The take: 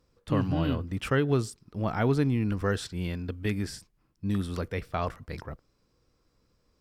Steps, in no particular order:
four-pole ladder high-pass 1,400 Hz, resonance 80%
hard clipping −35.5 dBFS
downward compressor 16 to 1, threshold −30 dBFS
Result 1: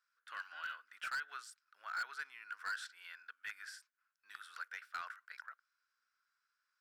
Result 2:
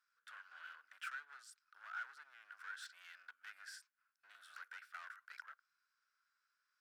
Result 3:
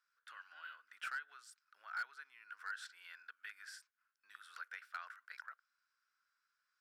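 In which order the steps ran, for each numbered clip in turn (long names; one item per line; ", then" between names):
four-pole ladder high-pass, then downward compressor, then hard clipping
downward compressor, then hard clipping, then four-pole ladder high-pass
downward compressor, then four-pole ladder high-pass, then hard clipping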